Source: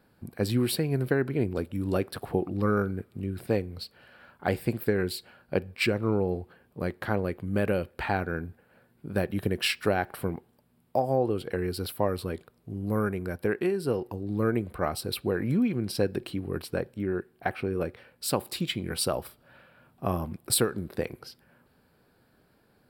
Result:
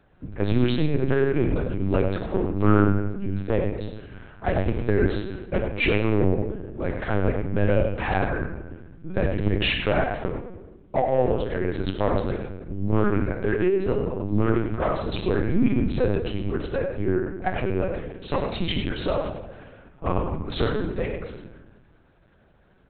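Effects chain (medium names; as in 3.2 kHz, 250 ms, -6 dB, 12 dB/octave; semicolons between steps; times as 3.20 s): 9.49–11.60 s: high-pass 220 Hz 12 dB/octave; hard clipper -17 dBFS, distortion -19 dB; delay 98 ms -8 dB; simulated room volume 600 m³, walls mixed, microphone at 0.99 m; LPC vocoder at 8 kHz pitch kept; trim +3 dB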